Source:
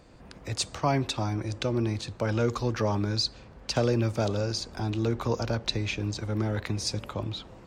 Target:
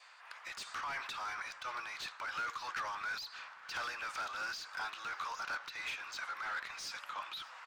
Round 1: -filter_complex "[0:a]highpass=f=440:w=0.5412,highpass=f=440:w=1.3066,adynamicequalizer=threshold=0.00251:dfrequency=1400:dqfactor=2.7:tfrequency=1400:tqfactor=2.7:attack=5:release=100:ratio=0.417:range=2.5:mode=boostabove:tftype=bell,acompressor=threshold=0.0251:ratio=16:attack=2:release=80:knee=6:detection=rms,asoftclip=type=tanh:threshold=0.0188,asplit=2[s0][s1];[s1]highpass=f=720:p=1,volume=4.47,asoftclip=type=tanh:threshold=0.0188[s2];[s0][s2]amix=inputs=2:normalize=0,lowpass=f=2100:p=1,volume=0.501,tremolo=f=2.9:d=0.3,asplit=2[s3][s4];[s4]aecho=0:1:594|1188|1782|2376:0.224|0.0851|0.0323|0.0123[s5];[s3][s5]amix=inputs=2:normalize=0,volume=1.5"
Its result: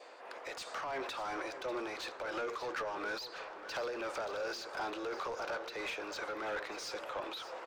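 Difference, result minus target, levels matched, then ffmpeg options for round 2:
500 Hz band +16.0 dB; echo-to-direct +7.5 dB
-filter_complex "[0:a]highpass=f=1100:w=0.5412,highpass=f=1100:w=1.3066,adynamicequalizer=threshold=0.00251:dfrequency=1400:dqfactor=2.7:tfrequency=1400:tqfactor=2.7:attack=5:release=100:ratio=0.417:range=2.5:mode=boostabove:tftype=bell,acompressor=threshold=0.0251:ratio=16:attack=2:release=80:knee=6:detection=rms,asoftclip=type=tanh:threshold=0.0188,asplit=2[s0][s1];[s1]highpass=f=720:p=1,volume=4.47,asoftclip=type=tanh:threshold=0.0188[s2];[s0][s2]amix=inputs=2:normalize=0,lowpass=f=2100:p=1,volume=0.501,tremolo=f=2.9:d=0.3,asplit=2[s3][s4];[s4]aecho=0:1:594|1188|1782:0.0944|0.0359|0.0136[s5];[s3][s5]amix=inputs=2:normalize=0,volume=1.5"

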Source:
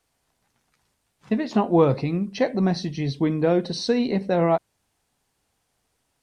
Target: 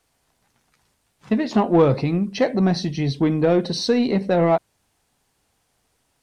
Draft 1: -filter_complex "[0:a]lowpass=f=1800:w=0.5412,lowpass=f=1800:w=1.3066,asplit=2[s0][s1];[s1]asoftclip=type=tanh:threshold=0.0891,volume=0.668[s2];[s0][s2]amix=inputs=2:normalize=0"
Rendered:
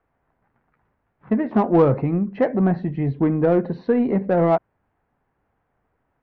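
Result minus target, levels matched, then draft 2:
2 kHz band -3.0 dB
-filter_complex "[0:a]asplit=2[s0][s1];[s1]asoftclip=type=tanh:threshold=0.0891,volume=0.668[s2];[s0][s2]amix=inputs=2:normalize=0"

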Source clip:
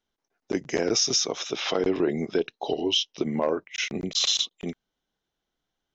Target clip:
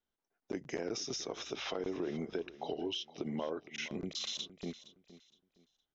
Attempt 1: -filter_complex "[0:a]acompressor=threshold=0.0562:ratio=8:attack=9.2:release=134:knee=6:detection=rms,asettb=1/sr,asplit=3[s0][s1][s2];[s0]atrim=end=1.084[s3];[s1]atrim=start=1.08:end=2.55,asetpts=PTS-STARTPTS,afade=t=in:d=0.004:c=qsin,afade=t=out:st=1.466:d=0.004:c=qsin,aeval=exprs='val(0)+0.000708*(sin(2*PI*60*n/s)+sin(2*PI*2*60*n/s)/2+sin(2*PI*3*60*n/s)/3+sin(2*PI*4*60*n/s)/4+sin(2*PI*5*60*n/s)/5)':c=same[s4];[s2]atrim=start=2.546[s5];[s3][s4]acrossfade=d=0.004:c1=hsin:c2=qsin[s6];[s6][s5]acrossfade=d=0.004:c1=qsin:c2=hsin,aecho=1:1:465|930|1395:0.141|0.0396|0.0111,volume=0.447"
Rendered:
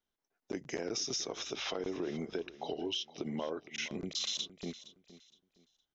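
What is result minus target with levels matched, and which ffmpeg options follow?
8 kHz band +3.0 dB
-filter_complex "[0:a]acompressor=threshold=0.0562:ratio=8:attack=9.2:release=134:knee=6:detection=rms,highshelf=f=3800:g=-6.5,asettb=1/sr,asplit=3[s0][s1][s2];[s0]atrim=end=1.084[s3];[s1]atrim=start=1.08:end=2.55,asetpts=PTS-STARTPTS,afade=t=in:d=0.004:c=qsin,afade=t=out:st=1.466:d=0.004:c=qsin,aeval=exprs='val(0)+0.000708*(sin(2*PI*60*n/s)+sin(2*PI*2*60*n/s)/2+sin(2*PI*3*60*n/s)/3+sin(2*PI*4*60*n/s)/4+sin(2*PI*5*60*n/s)/5)':c=same[s4];[s2]atrim=start=2.546[s5];[s3][s4]acrossfade=d=0.004:c1=hsin:c2=qsin[s6];[s6][s5]acrossfade=d=0.004:c1=qsin:c2=hsin,aecho=1:1:465|930|1395:0.141|0.0396|0.0111,volume=0.447"

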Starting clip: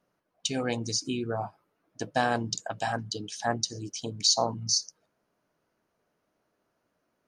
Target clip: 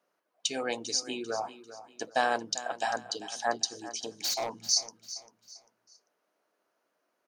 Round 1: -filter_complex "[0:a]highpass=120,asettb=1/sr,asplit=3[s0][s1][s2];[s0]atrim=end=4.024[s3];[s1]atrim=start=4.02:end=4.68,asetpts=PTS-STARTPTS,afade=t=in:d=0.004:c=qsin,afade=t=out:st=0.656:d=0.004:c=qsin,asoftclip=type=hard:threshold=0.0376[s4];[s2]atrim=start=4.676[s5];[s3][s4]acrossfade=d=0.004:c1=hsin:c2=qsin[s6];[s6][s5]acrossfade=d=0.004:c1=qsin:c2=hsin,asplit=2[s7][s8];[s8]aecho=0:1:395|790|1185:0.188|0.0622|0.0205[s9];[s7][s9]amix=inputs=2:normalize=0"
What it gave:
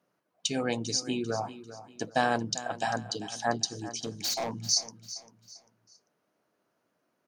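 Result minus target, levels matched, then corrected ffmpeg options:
125 Hz band +15.5 dB
-filter_complex "[0:a]highpass=390,asettb=1/sr,asplit=3[s0][s1][s2];[s0]atrim=end=4.024[s3];[s1]atrim=start=4.02:end=4.68,asetpts=PTS-STARTPTS,afade=t=in:d=0.004:c=qsin,afade=t=out:st=0.656:d=0.004:c=qsin,asoftclip=type=hard:threshold=0.0376[s4];[s2]atrim=start=4.676[s5];[s3][s4]acrossfade=d=0.004:c1=hsin:c2=qsin[s6];[s6][s5]acrossfade=d=0.004:c1=qsin:c2=hsin,asplit=2[s7][s8];[s8]aecho=0:1:395|790|1185:0.188|0.0622|0.0205[s9];[s7][s9]amix=inputs=2:normalize=0"

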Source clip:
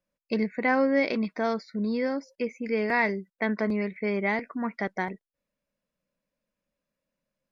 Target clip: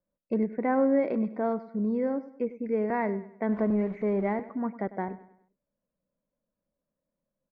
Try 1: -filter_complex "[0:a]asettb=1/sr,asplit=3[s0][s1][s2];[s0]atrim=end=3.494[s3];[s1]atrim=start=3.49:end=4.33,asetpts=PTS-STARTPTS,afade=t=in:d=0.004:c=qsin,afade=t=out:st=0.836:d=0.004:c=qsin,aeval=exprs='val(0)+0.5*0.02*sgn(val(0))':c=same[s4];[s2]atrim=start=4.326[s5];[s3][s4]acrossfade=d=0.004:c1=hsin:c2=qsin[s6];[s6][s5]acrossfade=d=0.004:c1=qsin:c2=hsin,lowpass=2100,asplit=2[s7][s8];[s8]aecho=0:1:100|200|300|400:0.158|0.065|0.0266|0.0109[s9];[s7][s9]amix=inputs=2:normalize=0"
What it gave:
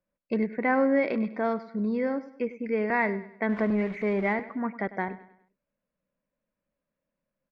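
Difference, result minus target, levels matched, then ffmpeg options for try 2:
2 kHz band +9.0 dB
-filter_complex "[0:a]asettb=1/sr,asplit=3[s0][s1][s2];[s0]atrim=end=3.494[s3];[s1]atrim=start=3.49:end=4.33,asetpts=PTS-STARTPTS,afade=t=in:d=0.004:c=qsin,afade=t=out:st=0.836:d=0.004:c=qsin,aeval=exprs='val(0)+0.5*0.02*sgn(val(0))':c=same[s4];[s2]atrim=start=4.326[s5];[s3][s4]acrossfade=d=0.004:c1=hsin:c2=qsin[s6];[s6][s5]acrossfade=d=0.004:c1=qsin:c2=hsin,lowpass=950,asplit=2[s7][s8];[s8]aecho=0:1:100|200|300|400:0.158|0.065|0.0266|0.0109[s9];[s7][s9]amix=inputs=2:normalize=0"

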